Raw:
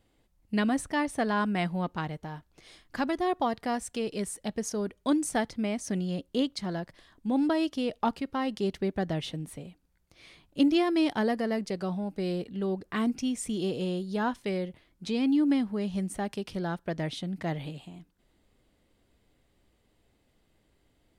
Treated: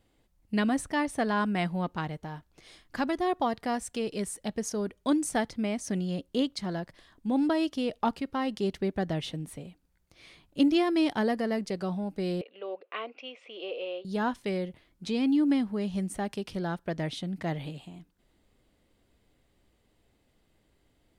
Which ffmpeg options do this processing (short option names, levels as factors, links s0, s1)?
-filter_complex "[0:a]asettb=1/sr,asplit=3[s0][s1][s2];[s0]atrim=end=12.414[s3];[s1]atrim=start=12.41:end=14.05,asetpts=PTS-STARTPTS,afade=t=in:d=0.004:c=qsin,afade=t=out:st=1.636:d=0.004:c=qsin,highpass=f=490:w=0.5412,highpass=f=490:w=1.3066,equalizer=f=530:t=q:w=4:g=7,equalizer=f=860:t=q:w=4:g=-5,equalizer=f=1700:t=q:w=4:g=-8,equalizer=f=2600:t=q:w=4:g=7,lowpass=f=3100:w=0.5412,lowpass=f=3100:w=1.3066[s4];[s2]atrim=start=14.046[s5];[s3][s4]acrossfade=d=0.004:c1=hsin:c2=qsin[s6];[s6][s5]acrossfade=d=0.004:c1=qsin:c2=hsin"